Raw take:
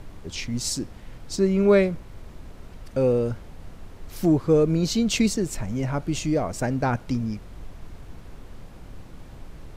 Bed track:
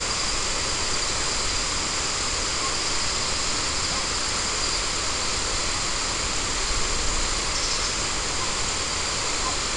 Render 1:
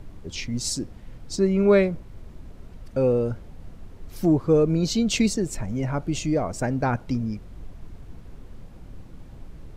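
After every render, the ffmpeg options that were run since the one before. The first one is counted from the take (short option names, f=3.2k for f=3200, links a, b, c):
-af "afftdn=nr=6:nf=-44"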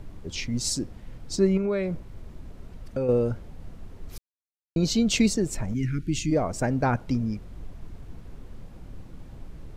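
-filter_complex "[0:a]asettb=1/sr,asplit=3[a][b][c];[a]atrim=end=1.574[d];[b]atrim=start=1.57:end=3.09,asetpts=PTS-STARTPTS,afade=t=in:d=0.004:c=qsin,afade=t=out:st=1.516:d=0.004:c=qsin,acompressor=threshold=-23dB:ratio=6:attack=3.2:release=140:knee=1:detection=peak[e];[c]atrim=start=3.086[f];[d][e]acrossfade=d=0.004:c1=hsin:c2=qsin[g];[g][f]acrossfade=d=0.004:c1=qsin:c2=hsin,asplit=3[h][i][j];[h]afade=t=out:st=5.73:d=0.02[k];[i]asuperstop=centerf=760:order=8:qfactor=0.6,afade=t=in:st=5.73:d=0.02,afade=t=out:st=6.3:d=0.02[l];[j]afade=t=in:st=6.3:d=0.02[m];[k][l][m]amix=inputs=3:normalize=0,asplit=3[n][o][p];[n]atrim=end=4.18,asetpts=PTS-STARTPTS,afade=t=out:st=4.176:d=0.004:c=hsin[q];[o]atrim=start=4.18:end=4.76,asetpts=PTS-STARTPTS,volume=0[r];[p]atrim=start=4.76,asetpts=PTS-STARTPTS,afade=t=in:d=0.004:c=hsin[s];[q][r][s]concat=n=3:v=0:a=1"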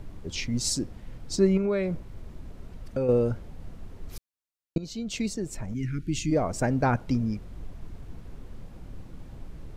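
-filter_complex "[0:a]asplit=2[a][b];[a]atrim=end=4.78,asetpts=PTS-STARTPTS,afade=t=out:st=4.776:d=0.004:c=hsin:silence=0.158489[c];[b]atrim=start=4.78,asetpts=PTS-STARTPTS,afade=t=in:d=1.77:silence=0.158489[d];[c][d]concat=n=2:v=0:a=1"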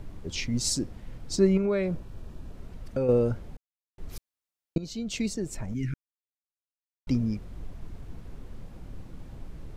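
-filter_complex "[0:a]asettb=1/sr,asplit=3[a][b][c];[a]atrim=end=1.884[d];[b]atrim=start=1.88:end=2.53,asetpts=PTS-STARTPTS,afade=t=in:d=0.004:c=qsin,afade=t=out:st=0.646:d=0.004:c=qsin,asuperstop=centerf=2100:order=4:qfactor=7.5[e];[c]atrim=start=2.526[f];[d][e]acrossfade=d=0.004:c1=hsin:c2=qsin[g];[g][f]acrossfade=d=0.004:c1=qsin:c2=hsin,asplit=5[h][i][j][k][l];[h]atrim=end=3.57,asetpts=PTS-STARTPTS,afade=t=out:st=3.566:d=0.004:c=hsin[m];[i]atrim=start=3.57:end=3.98,asetpts=PTS-STARTPTS,volume=0[n];[j]atrim=start=3.98:end=5.94,asetpts=PTS-STARTPTS,afade=t=in:d=0.004:c=hsin,afade=t=out:st=1.956:d=0.004:c=hsin[o];[k]atrim=start=5.94:end=7.07,asetpts=PTS-STARTPTS,volume=0[p];[l]atrim=start=7.07,asetpts=PTS-STARTPTS,afade=t=in:d=0.004:c=hsin[q];[m][n][o][p][q]concat=n=5:v=0:a=1"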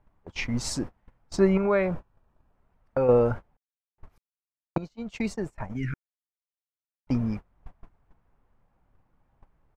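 -af "agate=range=-26dB:threshold=-32dB:ratio=16:detection=peak,firequalizer=gain_entry='entry(350,0);entry(850,13);entry(3900,-4);entry(7600,-6)':delay=0.05:min_phase=1"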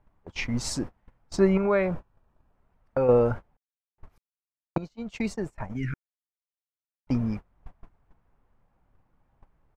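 -af anull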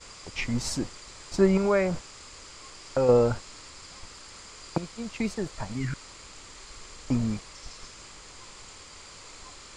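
-filter_complex "[1:a]volume=-21dB[a];[0:a][a]amix=inputs=2:normalize=0"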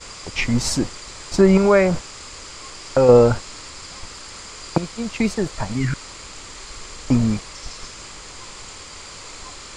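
-af "volume=9dB,alimiter=limit=-3dB:level=0:latency=1"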